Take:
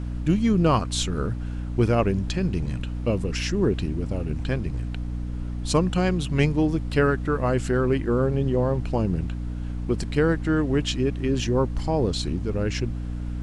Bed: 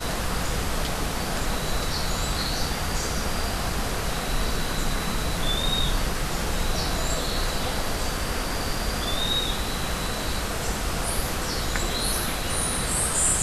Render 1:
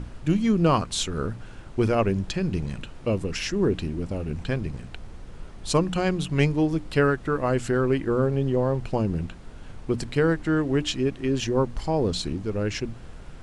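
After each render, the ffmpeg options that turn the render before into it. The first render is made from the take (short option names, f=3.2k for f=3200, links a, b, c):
-af "bandreject=f=60:t=h:w=6,bandreject=f=120:t=h:w=6,bandreject=f=180:t=h:w=6,bandreject=f=240:t=h:w=6,bandreject=f=300:t=h:w=6"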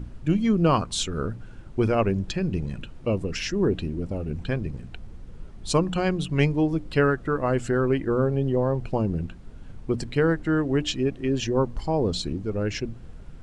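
-af "afftdn=nr=8:nf=-42"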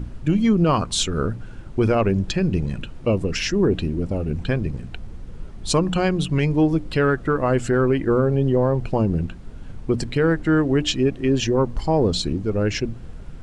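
-af "acontrast=38,alimiter=limit=-10dB:level=0:latency=1:release=74"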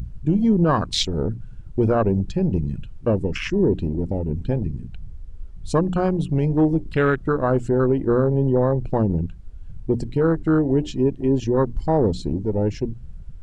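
-af "afwtdn=0.0631,highshelf=f=4.4k:g=6"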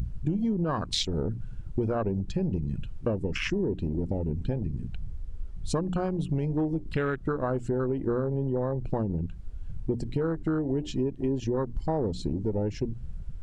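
-af "acompressor=threshold=-25dB:ratio=6"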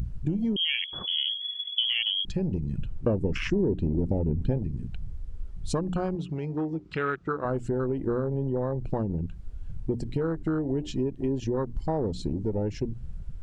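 -filter_complex "[0:a]asettb=1/sr,asplit=3[a][b][c];[a]atrim=end=0.564[d];[b]atrim=start=0.56:end=2.25,asetpts=PTS-STARTPTS,afade=t=in:d=0.004:c=qsin,afade=t=out:st=1.686:d=0.004:c=qsin,lowpass=f=2.9k:t=q:w=0.5098,lowpass=f=2.9k:t=q:w=0.6013,lowpass=f=2.9k:t=q:w=0.9,lowpass=f=2.9k:t=q:w=2.563,afreqshift=-3400[e];[c]atrim=start=2.246[f];[d][e]acrossfade=d=0.004:c1=hsin:c2=qsin[g];[g][f]acrossfade=d=0.004:c1=qsin:c2=hsin,asettb=1/sr,asplit=3[h][i][j];[h]atrim=end=2.784[k];[i]atrim=start=2.78:end=4.58,asetpts=PTS-STARTPTS,afade=t=in:d=0.004:c=qsin,afade=t=out:st=1.796:d=0.004:c=qsin,tiltshelf=f=1.4k:g=3.5[l];[j]atrim=start=4.576[m];[k][l]acrossfade=d=0.004:c1=hsin:c2=qsin[n];[n][m]acrossfade=d=0.004:c1=qsin:c2=hsin,asettb=1/sr,asplit=3[o][p][q];[o]atrim=end=6.154[r];[p]atrim=start=6.15:end=7.45,asetpts=PTS-STARTPTS,afade=t=in:d=0.004:c=qsin,afade=t=out:st=1.296:d=0.004:c=qsin,highpass=120,equalizer=f=120:t=q:w=4:g=-8,equalizer=f=240:t=q:w=4:g=-9,equalizer=f=590:t=q:w=4:g=-5,equalizer=f=1.3k:t=q:w=4:g=6,equalizer=f=2.4k:t=q:w=4:g=3,lowpass=f=7.1k:w=0.5412,lowpass=f=7.1k:w=1.3066[s];[q]atrim=start=7.446[t];[r][s]acrossfade=d=0.004:c1=hsin:c2=qsin[u];[u][t]acrossfade=d=0.004:c1=qsin:c2=hsin"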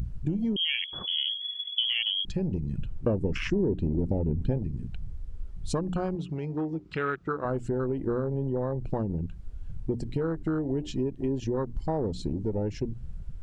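-af "volume=-1dB"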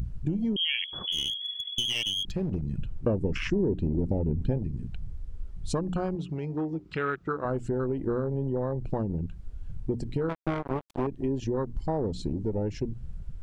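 -filter_complex "[0:a]asettb=1/sr,asplit=3[a][b][c];[a]atrim=end=1.124[d];[b]atrim=start=1.12:end=2.69,asetpts=PTS-STARTPTS,afade=t=in:d=0.004:c=qsin,afade=t=out:st=1.566:d=0.004:c=qsin,aeval=exprs='clip(val(0),-1,0.0398)':c=same[e];[c]atrim=start=2.686[f];[d][e]acrossfade=d=0.004:c1=hsin:c2=qsin[g];[g][f]acrossfade=d=0.004:c1=qsin:c2=hsin,asettb=1/sr,asplit=3[h][i][j];[h]atrim=end=10.294[k];[i]atrim=start=10.29:end=11.07,asetpts=PTS-STARTPTS,afade=t=in:d=0.004:c=qsin,afade=t=out:st=0.776:d=0.004:c=qsin,acrusher=bits=3:mix=0:aa=0.5[l];[j]atrim=start=11.066[m];[k][l]acrossfade=d=0.004:c1=hsin:c2=qsin[n];[n][m]acrossfade=d=0.004:c1=qsin:c2=hsin"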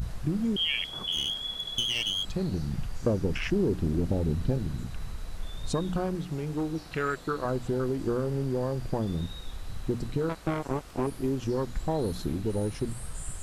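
-filter_complex "[1:a]volume=-21dB[a];[0:a][a]amix=inputs=2:normalize=0"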